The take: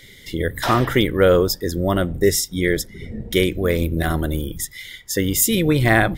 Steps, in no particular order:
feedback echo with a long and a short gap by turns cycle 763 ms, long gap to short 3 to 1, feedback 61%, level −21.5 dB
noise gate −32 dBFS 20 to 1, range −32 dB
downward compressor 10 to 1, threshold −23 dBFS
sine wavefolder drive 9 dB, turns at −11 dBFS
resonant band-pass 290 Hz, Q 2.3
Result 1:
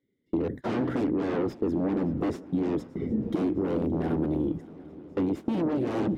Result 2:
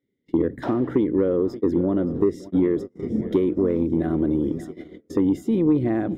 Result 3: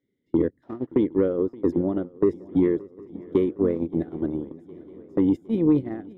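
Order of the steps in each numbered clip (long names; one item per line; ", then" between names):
sine wavefolder, then resonant band-pass, then downward compressor, then noise gate, then feedback echo with a long and a short gap by turns
feedback echo with a long and a short gap by turns, then downward compressor, then noise gate, then resonant band-pass, then sine wavefolder
downward compressor, then resonant band-pass, then noise gate, then sine wavefolder, then feedback echo with a long and a short gap by turns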